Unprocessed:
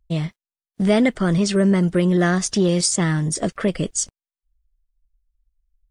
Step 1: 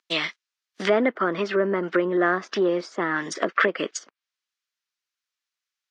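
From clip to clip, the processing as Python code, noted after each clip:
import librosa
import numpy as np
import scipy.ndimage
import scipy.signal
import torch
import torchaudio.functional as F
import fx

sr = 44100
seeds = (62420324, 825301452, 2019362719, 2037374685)

y = scipy.signal.sosfilt(scipy.signal.butter(4, 300.0, 'highpass', fs=sr, output='sos'), x)
y = fx.env_lowpass_down(y, sr, base_hz=790.0, full_db=-20.0)
y = fx.band_shelf(y, sr, hz=2700.0, db=13.5, octaves=2.9)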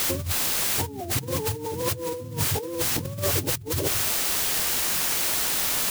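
y = fx.octave_mirror(x, sr, pivot_hz=420.0)
y = fx.quant_dither(y, sr, seeds[0], bits=6, dither='triangular')
y = fx.over_compress(y, sr, threshold_db=-33.0, ratio=-1.0)
y = y * 10.0 ** (5.0 / 20.0)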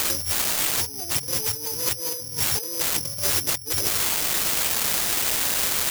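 y = (np.kron(x[::8], np.eye(8)[0]) * 8)[:len(x)]
y = y * 10.0 ** (-7.5 / 20.0)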